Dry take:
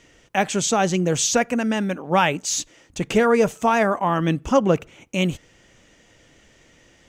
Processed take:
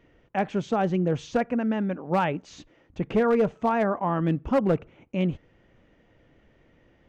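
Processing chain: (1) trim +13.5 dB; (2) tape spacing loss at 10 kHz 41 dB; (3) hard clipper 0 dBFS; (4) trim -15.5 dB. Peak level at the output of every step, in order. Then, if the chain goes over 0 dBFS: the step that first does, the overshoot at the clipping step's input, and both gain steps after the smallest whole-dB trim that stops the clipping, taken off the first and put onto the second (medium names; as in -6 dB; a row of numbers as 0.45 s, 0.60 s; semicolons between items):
+9.0 dBFS, +6.5 dBFS, 0.0 dBFS, -15.5 dBFS; step 1, 6.5 dB; step 1 +6.5 dB, step 4 -8.5 dB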